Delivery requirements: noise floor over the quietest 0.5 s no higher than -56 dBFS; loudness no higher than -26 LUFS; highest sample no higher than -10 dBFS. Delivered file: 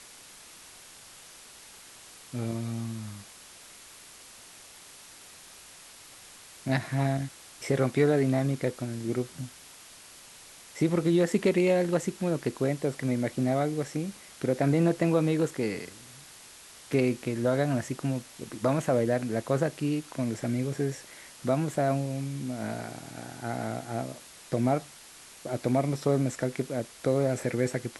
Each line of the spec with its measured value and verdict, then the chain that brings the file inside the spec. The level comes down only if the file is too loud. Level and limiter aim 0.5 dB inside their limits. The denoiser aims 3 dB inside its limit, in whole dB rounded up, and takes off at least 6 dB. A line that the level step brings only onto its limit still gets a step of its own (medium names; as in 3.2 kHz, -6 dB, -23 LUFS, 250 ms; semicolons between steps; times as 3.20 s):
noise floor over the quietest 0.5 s -50 dBFS: fail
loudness -29.0 LUFS: pass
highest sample -12.0 dBFS: pass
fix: noise reduction 9 dB, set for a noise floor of -50 dBFS